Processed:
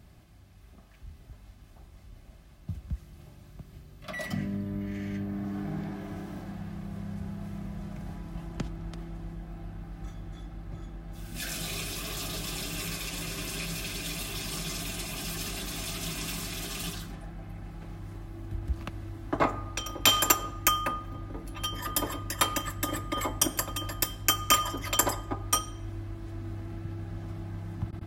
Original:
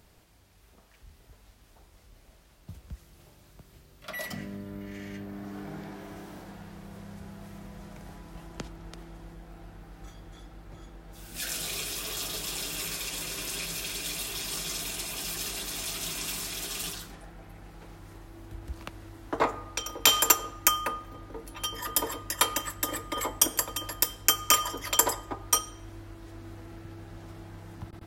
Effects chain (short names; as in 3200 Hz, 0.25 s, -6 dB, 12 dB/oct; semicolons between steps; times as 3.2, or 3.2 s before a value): tone controls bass +8 dB, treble -4 dB; notch comb 470 Hz; gain +1.5 dB